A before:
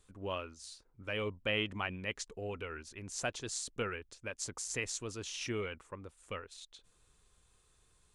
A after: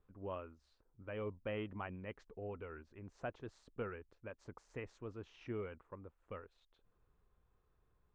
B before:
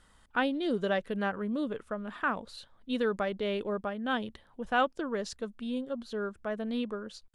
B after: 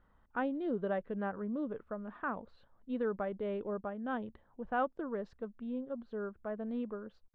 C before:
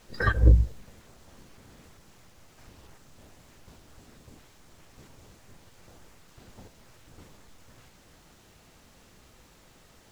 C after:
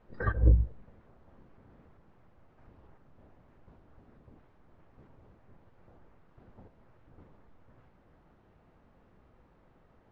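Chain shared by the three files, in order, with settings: LPF 1300 Hz 12 dB/oct; gain -4.5 dB

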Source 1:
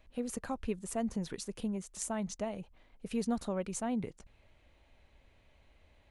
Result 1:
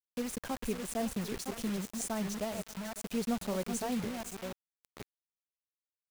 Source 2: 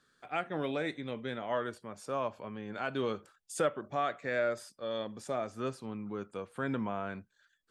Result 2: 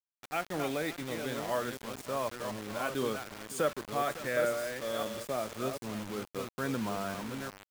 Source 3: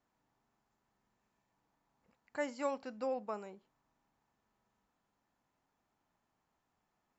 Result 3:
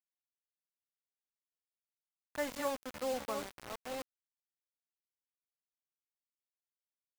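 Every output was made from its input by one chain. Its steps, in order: reverse delay 0.503 s, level -6.5 dB; echo 0.555 s -16 dB; bit-crush 7-bit

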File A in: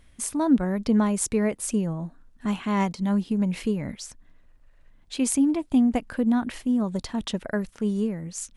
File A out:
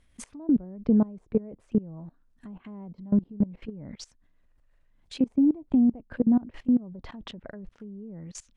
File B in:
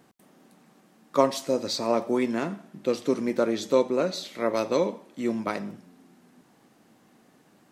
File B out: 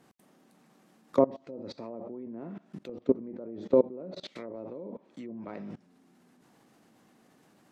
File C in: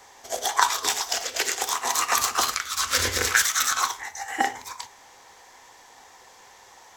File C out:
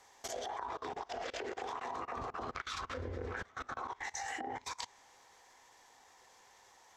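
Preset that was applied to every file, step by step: dynamic EQ 1300 Hz, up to -6 dB, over -40 dBFS, Q 0.82; treble ducked by the level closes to 720 Hz, closed at -23 dBFS; level quantiser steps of 22 dB; gain +3.5 dB

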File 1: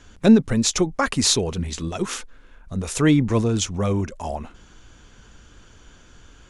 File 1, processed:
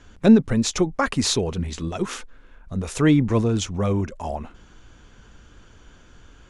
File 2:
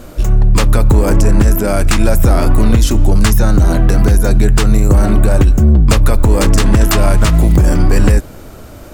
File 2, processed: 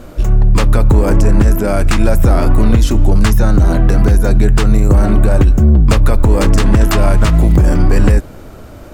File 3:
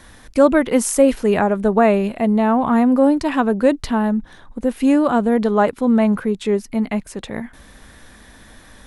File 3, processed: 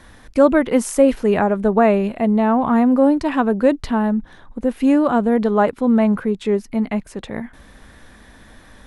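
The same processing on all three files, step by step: high shelf 4100 Hz -7 dB

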